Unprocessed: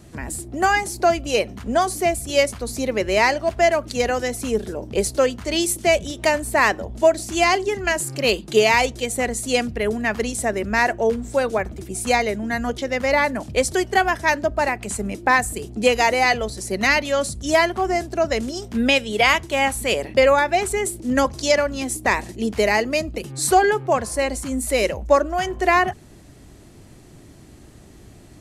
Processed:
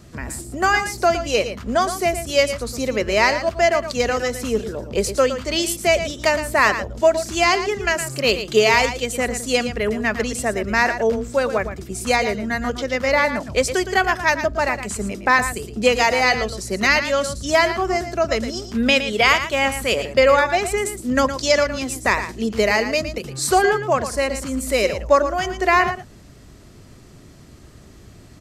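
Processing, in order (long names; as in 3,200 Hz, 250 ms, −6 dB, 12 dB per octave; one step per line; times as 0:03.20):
thirty-one-band graphic EQ 315 Hz −4 dB, 800 Hz −4 dB, 1,250 Hz +4 dB, 5,000 Hz +3 dB, 10,000 Hz −7 dB
single-tap delay 114 ms −10.5 dB
level +1 dB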